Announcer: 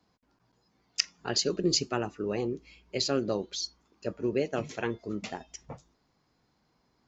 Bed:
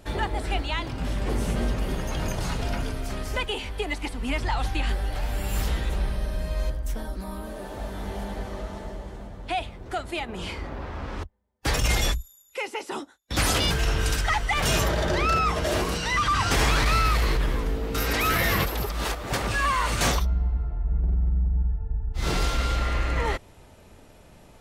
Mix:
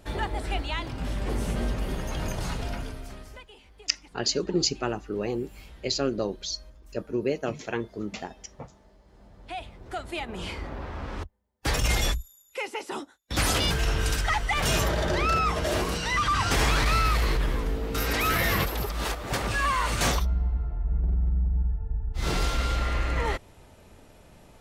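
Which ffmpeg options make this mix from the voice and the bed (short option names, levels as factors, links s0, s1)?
-filter_complex "[0:a]adelay=2900,volume=1.19[s0];[1:a]volume=7.5,afade=t=out:st=2.49:d=0.96:silence=0.112202,afade=t=in:st=9.04:d=1.29:silence=0.1[s1];[s0][s1]amix=inputs=2:normalize=0"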